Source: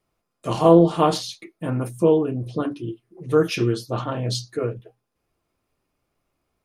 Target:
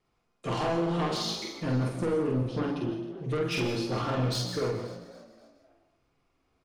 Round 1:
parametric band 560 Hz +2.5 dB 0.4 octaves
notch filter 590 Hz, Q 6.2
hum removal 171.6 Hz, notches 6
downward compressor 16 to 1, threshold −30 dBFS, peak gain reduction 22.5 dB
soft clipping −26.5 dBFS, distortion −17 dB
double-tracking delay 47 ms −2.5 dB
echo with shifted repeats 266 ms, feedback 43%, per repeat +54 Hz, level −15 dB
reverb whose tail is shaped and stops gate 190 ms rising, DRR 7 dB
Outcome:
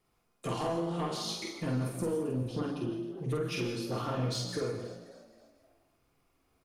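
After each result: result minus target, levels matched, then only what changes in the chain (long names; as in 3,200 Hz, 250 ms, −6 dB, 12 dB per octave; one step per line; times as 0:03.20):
downward compressor: peak gain reduction +8 dB; 8,000 Hz band +3.0 dB
change: downward compressor 16 to 1, threshold −21.5 dBFS, peak gain reduction 15 dB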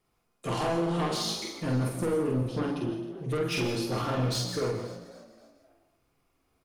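8,000 Hz band +3.5 dB
add first: low-pass filter 6,100 Hz 12 dB per octave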